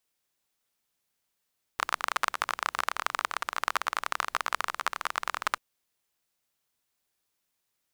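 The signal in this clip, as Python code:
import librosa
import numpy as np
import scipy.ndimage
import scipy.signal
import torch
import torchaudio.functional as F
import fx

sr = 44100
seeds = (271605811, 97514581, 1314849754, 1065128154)

y = fx.rain(sr, seeds[0], length_s=3.79, drops_per_s=27.0, hz=1200.0, bed_db=-29.5)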